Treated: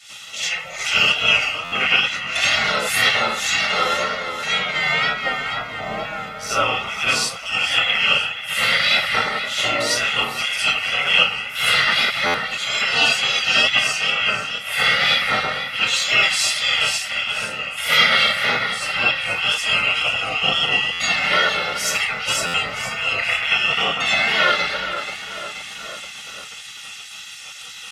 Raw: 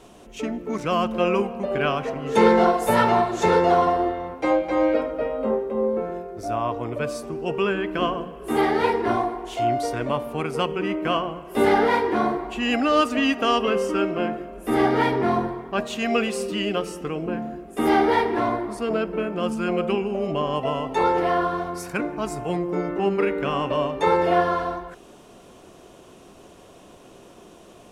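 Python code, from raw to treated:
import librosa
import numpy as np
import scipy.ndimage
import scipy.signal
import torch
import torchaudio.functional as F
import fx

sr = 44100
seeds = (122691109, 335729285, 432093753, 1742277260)

y = fx.octave_divider(x, sr, octaves=1, level_db=-5.0)
y = np.clip(y, -10.0 ** (-9.0 / 20.0), 10.0 ** (-9.0 / 20.0))
y = fx.low_shelf(y, sr, hz=380.0, db=-7.5)
y = fx.echo_feedback(y, sr, ms=481, feedback_pct=50, wet_db=-12)
y = fx.rev_freeverb(y, sr, rt60_s=0.4, hf_ratio=0.6, predelay_ms=25, drr_db=-8.0)
y = fx.wow_flutter(y, sr, seeds[0], rate_hz=2.1, depth_cents=56.0)
y = fx.spec_gate(y, sr, threshold_db=-15, keep='weak')
y = y + 0.65 * np.pad(y, (int(1.5 * sr / 1000.0), 0))[:len(y)]
y = fx.rider(y, sr, range_db=4, speed_s=2.0)
y = fx.weighting(y, sr, curve='D')
y = fx.buffer_glitch(y, sr, at_s=(1.64, 12.26, 20.92, 22.46), block=512, repeats=6)
y = y * 10.0 ** (-1.0 / 20.0)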